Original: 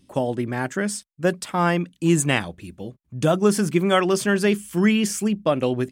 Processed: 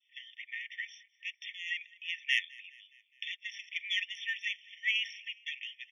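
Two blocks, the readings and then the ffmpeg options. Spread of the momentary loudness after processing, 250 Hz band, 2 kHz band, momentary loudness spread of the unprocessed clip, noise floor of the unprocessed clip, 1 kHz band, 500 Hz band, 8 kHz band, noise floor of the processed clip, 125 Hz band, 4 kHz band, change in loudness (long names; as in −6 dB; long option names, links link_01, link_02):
13 LU, below −40 dB, −6.0 dB, 8 LU, −65 dBFS, below −40 dB, below −40 dB, −26.0 dB, −73 dBFS, below −40 dB, −3.5 dB, −14.0 dB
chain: -filter_complex "[0:a]highpass=200,equalizer=frequency=470:width=0.55:gain=2.5,aresample=11025,aresample=44100,asoftclip=type=tanh:threshold=-11.5dB,adynamicequalizer=threshold=0.0126:dfrequency=2200:dqfactor=1.3:tfrequency=2200:tqfactor=1.3:attack=5:release=100:ratio=0.375:range=1.5:mode=cutabove:tftype=bell,asplit=5[link_01][link_02][link_03][link_04][link_05];[link_02]adelay=207,afreqshift=-34,volume=-23.5dB[link_06];[link_03]adelay=414,afreqshift=-68,volume=-28.1dB[link_07];[link_04]adelay=621,afreqshift=-102,volume=-32.7dB[link_08];[link_05]adelay=828,afreqshift=-136,volume=-37.2dB[link_09];[link_01][link_06][link_07][link_08][link_09]amix=inputs=5:normalize=0,afftfilt=real='re*eq(mod(floor(b*sr/1024/1800),2),1)':imag='im*eq(mod(floor(b*sr/1024/1800),2),1)':win_size=1024:overlap=0.75"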